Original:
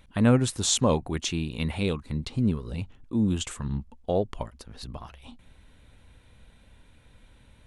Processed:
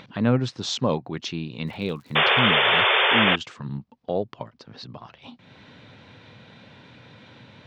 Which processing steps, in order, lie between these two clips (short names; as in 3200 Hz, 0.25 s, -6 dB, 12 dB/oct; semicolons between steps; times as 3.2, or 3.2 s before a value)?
elliptic band-pass 120–5100 Hz, stop band 40 dB; 1.66–2.19 crackle 130/s -41 dBFS; upward compressor, threshold -35 dBFS; 2.15–3.36 painted sound noise 360–3600 Hz -19 dBFS